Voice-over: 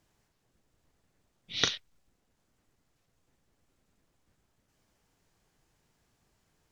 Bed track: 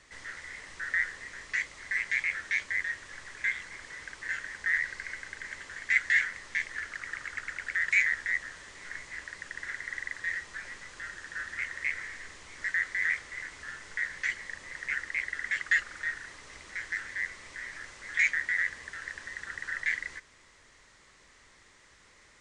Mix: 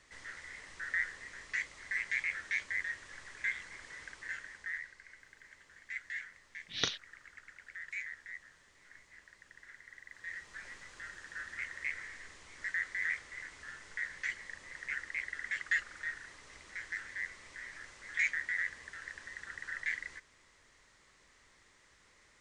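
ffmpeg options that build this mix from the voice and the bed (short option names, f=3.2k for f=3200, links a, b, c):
-filter_complex "[0:a]adelay=5200,volume=-5dB[a];[1:a]volume=5.5dB,afade=t=out:st=4.04:d=0.9:silence=0.266073,afade=t=in:st=10.05:d=0.61:silence=0.298538[b];[a][b]amix=inputs=2:normalize=0"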